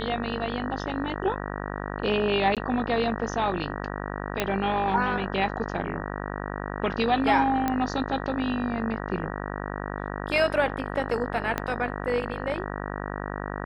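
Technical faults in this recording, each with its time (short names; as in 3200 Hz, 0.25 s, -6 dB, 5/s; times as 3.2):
buzz 50 Hz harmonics 38 -33 dBFS
2.55–2.57 gap 17 ms
4.4 pop -9 dBFS
7.68 pop -12 dBFS
11.58 pop -12 dBFS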